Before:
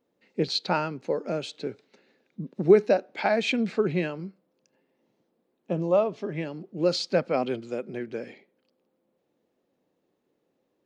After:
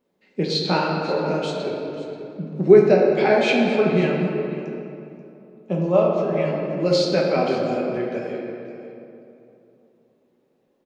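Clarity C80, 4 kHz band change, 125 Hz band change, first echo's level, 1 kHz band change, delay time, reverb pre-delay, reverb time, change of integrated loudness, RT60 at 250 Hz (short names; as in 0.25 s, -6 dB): 2.0 dB, +5.0 dB, +8.0 dB, -15.5 dB, +6.5 dB, 0.534 s, 5 ms, 2.9 s, +6.5 dB, 3.3 s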